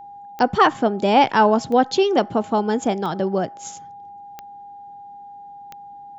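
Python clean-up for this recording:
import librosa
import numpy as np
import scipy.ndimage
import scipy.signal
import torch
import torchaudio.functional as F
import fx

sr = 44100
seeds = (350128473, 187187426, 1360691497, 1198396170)

y = fx.fix_declick_ar(x, sr, threshold=10.0)
y = fx.notch(y, sr, hz=810.0, q=30.0)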